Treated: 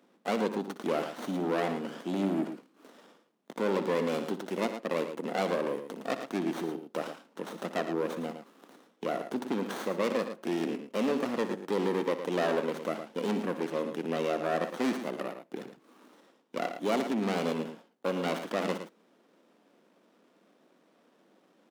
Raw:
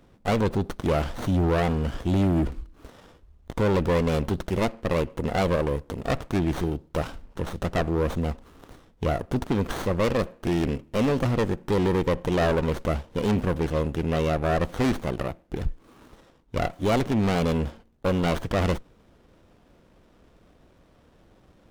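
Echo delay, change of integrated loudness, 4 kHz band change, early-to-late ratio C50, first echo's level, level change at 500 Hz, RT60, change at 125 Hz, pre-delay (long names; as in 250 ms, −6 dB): 61 ms, −6.5 dB, −5.0 dB, no reverb audible, −13.0 dB, −5.0 dB, no reverb audible, −17.5 dB, no reverb audible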